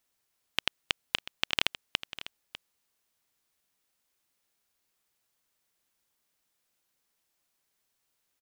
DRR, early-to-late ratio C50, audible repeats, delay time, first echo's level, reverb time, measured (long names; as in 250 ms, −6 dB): no reverb audible, no reverb audible, 1, 599 ms, −14.5 dB, no reverb audible